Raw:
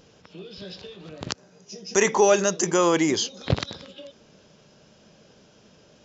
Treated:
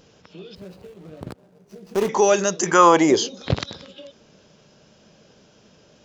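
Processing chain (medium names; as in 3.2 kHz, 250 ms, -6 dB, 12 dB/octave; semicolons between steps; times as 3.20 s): 0.55–2.09 s: median filter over 25 samples; 2.65–3.34 s: peaking EQ 1.8 kHz -> 290 Hz +12 dB 1.3 oct; trim +1 dB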